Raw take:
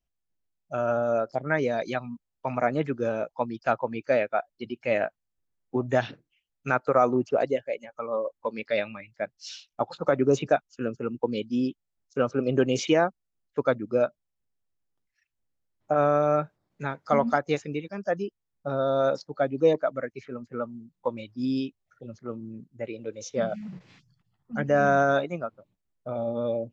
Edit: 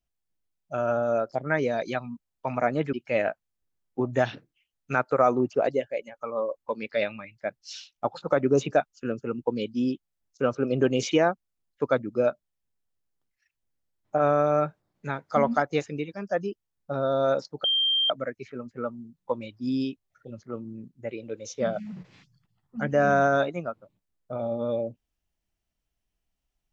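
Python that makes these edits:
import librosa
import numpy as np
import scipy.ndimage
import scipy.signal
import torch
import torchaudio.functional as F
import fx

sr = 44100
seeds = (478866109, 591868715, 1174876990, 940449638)

y = fx.edit(x, sr, fx.cut(start_s=2.93, length_s=1.76),
    fx.bleep(start_s=19.4, length_s=0.46, hz=3170.0, db=-20.5), tone=tone)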